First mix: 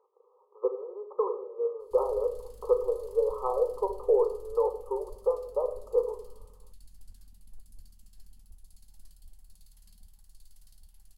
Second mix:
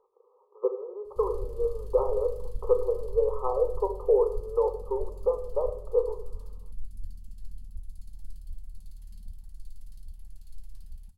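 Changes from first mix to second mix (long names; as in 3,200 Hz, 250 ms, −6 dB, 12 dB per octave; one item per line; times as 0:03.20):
background: entry −0.75 s
master: add bass and treble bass +13 dB, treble −3 dB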